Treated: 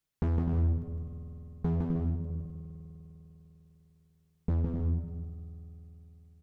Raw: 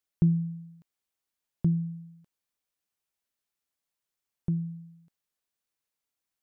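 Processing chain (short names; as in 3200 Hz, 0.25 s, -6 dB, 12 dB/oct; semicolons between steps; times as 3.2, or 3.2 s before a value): octaver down 1 oct, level +4 dB; flange 0.6 Hz, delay 5.7 ms, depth 9.1 ms, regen +34%; spring tank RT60 3.8 s, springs 50 ms, chirp 70 ms, DRR 11.5 dB; hard clip -31 dBFS, distortion -4 dB; tone controls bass +6 dB, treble -1 dB; compressor, threshold -32 dBFS, peak gain reduction 6 dB; bouncing-ball echo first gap 0.16 s, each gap 0.6×, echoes 5; Doppler distortion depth 0.7 ms; gain +5 dB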